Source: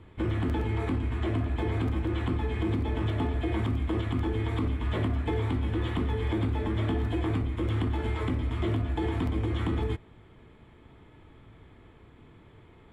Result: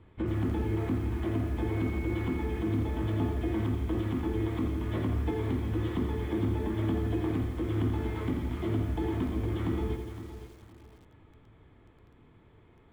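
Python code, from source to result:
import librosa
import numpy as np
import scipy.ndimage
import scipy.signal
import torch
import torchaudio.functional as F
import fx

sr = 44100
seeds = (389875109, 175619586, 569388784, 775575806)

y = fx.dmg_tone(x, sr, hz=2200.0, level_db=-43.0, at=(1.67, 2.42), fade=0.02)
y = fx.high_shelf(y, sr, hz=3000.0, db=-5.0)
y = fx.echo_feedback(y, sr, ms=513, feedback_pct=31, wet_db=-11.0)
y = fx.dynamic_eq(y, sr, hz=230.0, q=0.96, threshold_db=-41.0, ratio=4.0, max_db=5)
y = fx.echo_crushed(y, sr, ms=85, feedback_pct=55, bits=8, wet_db=-7.0)
y = y * librosa.db_to_amplitude(-5.0)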